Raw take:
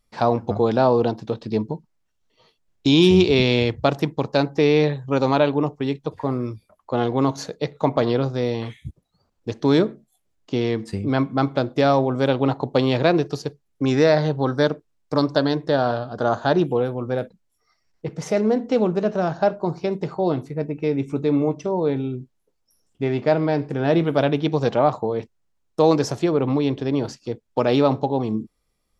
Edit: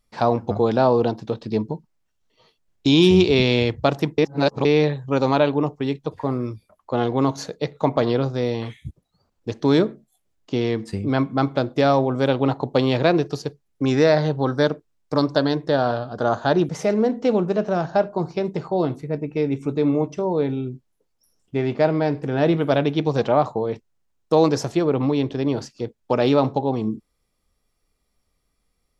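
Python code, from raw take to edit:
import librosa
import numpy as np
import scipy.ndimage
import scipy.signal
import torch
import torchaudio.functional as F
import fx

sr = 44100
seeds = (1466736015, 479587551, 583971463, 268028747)

y = fx.edit(x, sr, fx.reverse_span(start_s=4.18, length_s=0.47),
    fx.cut(start_s=16.69, length_s=1.47), tone=tone)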